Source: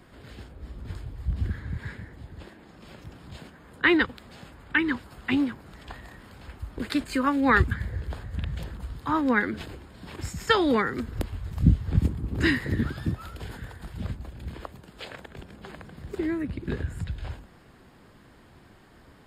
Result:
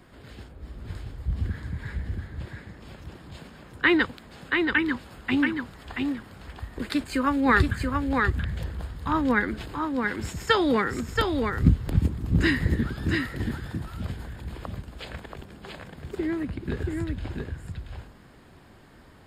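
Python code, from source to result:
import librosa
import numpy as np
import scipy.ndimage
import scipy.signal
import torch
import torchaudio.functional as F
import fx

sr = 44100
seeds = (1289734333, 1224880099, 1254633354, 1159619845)

y = x + 10.0 ** (-4.0 / 20.0) * np.pad(x, (int(680 * sr / 1000.0), 0))[:len(x)]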